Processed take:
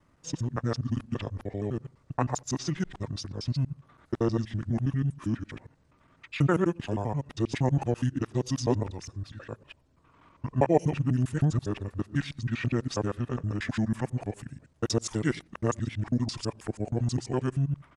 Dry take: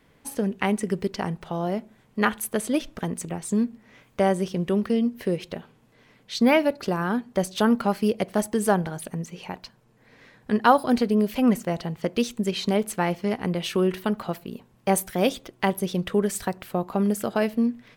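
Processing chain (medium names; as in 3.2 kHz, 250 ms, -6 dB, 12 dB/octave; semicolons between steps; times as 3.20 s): time reversed locally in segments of 81 ms; pitch shift -9 st; trim -4.5 dB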